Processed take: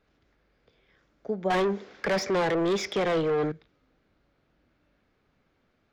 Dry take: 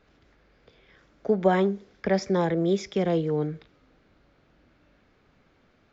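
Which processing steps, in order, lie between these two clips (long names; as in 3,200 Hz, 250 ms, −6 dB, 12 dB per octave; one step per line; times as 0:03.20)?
0:01.50–0:03.52: mid-hump overdrive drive 27 dB, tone 3,000 Hz, clips at −10 dBFS
level −7.5 dB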